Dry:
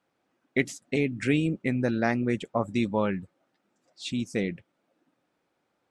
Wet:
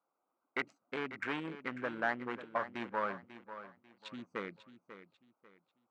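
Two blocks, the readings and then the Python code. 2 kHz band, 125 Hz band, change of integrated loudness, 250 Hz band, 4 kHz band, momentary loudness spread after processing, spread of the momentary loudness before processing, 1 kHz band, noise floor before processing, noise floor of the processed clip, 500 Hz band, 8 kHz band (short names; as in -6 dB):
-5.5 dB, -22.5 dB, -11.5 dB, -17.0 dB, -10.5 dB, 20 LU, 8 LU, -3.5 dB, -77 dBFS, under -85 dBFS, -11.5 dB, under -20 dB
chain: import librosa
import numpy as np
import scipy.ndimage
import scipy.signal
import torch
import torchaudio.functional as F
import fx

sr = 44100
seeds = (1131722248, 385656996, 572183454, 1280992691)

y = fx.wiener(x, sr, points=25)
y = np.clip(y, -10.0 ** (-20.5 / 20.0), 10.0 ** (-20.5 / 20.0))
y = fx.bandpass_q(y, sr, hz=1300.0, q=2.1)
y = fx.echo_feedback(y, sr, ms=543, feedback_pct=31, wet_db=-12.5)
y = y * 10.0 ** (4.0 / 20.0)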